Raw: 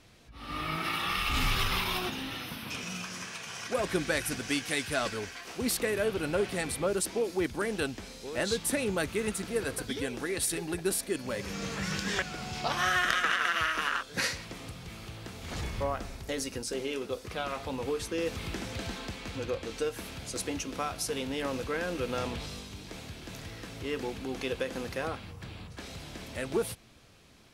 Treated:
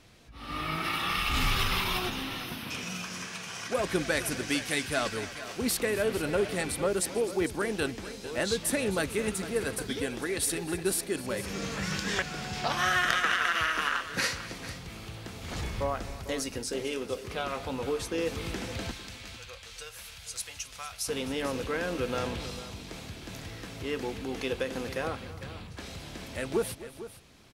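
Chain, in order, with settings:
0:18.91–0:21.08: guitar amp tone stack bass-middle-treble 10-0-10
multi-tap delay 258/450 ms −17/−14 dB
level +1 dB

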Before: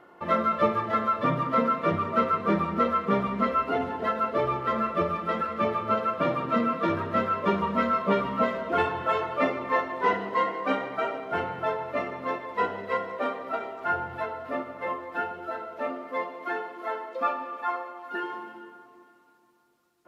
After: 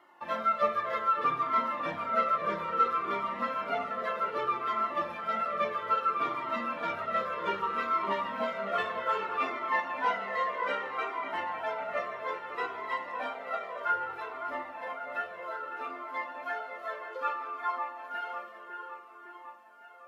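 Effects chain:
high-pass filter 870 Hz 6 dB per octave
delay with a low-pass on its return 556 ms, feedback 60%, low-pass 2,800 Hz, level −7.5 dB
flanger whose copies keep moving one way falling 0.62 Hz
level +2 dB

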